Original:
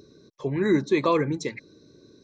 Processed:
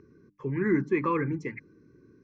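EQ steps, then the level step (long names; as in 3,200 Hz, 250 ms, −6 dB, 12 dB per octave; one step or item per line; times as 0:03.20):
low-pass filter 2,900 Hz 12 dB per octave
mains-hum notches 50/100/150/200/250/300 Hz
phaser with its sweep stopped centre 1,600 Hz, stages 4
0.0 dB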